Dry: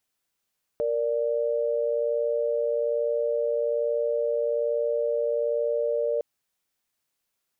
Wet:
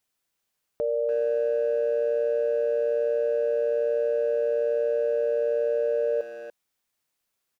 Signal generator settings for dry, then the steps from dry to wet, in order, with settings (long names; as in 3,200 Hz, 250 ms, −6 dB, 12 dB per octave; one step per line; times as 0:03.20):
held notes A#4/D5 sine, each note −25.5 dBFS 5.41 s
far-end echo of a speakerphone 290 ms, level −8 dB